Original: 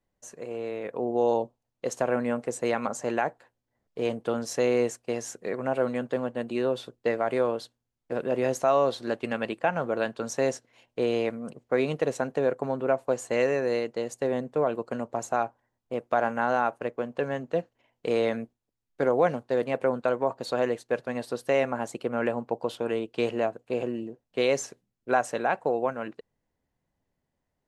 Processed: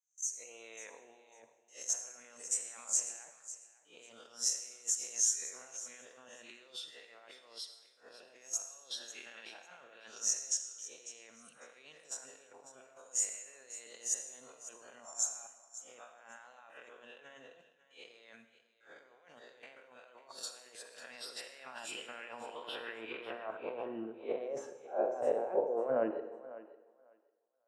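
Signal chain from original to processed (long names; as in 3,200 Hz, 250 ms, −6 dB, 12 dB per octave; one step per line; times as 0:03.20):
peak hold with a rise ahead of every peak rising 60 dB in 0.47 s
noise reduction from a noise print of the clip's start 13 dB
noise gate with hold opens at −52 dBFS
parametric band 4,400 Hz −9.5 dB 0.33 octaves
compressor whose output falls as the input rises −34 dBFS, ratio −1
band-pass filter sweep 6,400 Hz → 510 Hz, 0:20.91–0:24.80
feedback echo with a high-pass in the loop 548 ms, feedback 17%, high-pass 380 Hz, level −15 dB
on a send at −9 dB: convolution reverb RT60 0.95 s, pre-delay 37 ms
on the sum: level +4 dB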